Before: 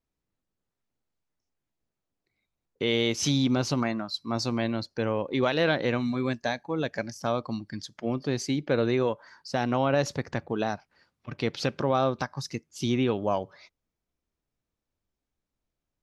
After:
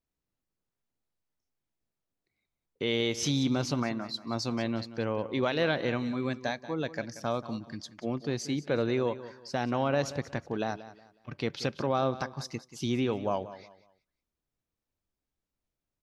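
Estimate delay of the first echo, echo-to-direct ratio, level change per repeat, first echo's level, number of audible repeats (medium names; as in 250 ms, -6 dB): 183 ms, -14.5 dB, -11.0 dB, -15.0 dB, 2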